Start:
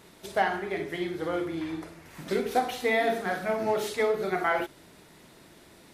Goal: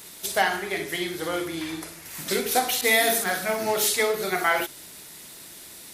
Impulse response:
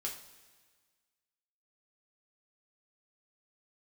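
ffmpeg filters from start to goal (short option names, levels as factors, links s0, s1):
-filter_complex "[0:a]crystalizer=i=6.5:c=0,asettb=1/sr,asplit=3[s0][s1][s2];[s0]atrim=end=2.814[s3];[s1]atrim=start=2.81:end=3.24,asetpts=PTS-STARTPTS,afade=t=in:d=0.004:c=qsin,afade=t=out:st=0.426:d=0.004:c=qsin,adynamicequalizer=threshold=0.0126:dfrequency=4800:dqfactor=0.7:tfrequency=4800:tqfactor=0.7:attack=5:release=100:ratio=0.375:range=4:mode=boostabove:tftype=highshelf[s4];[s2]atrim=start=3.236[s5];[s3][s4]acrossfade=d=0.004:c1=hsin:c2=qsin[s6];[s6][s5]acrossfade=d=0.004:c1=qsin:c2=hsin"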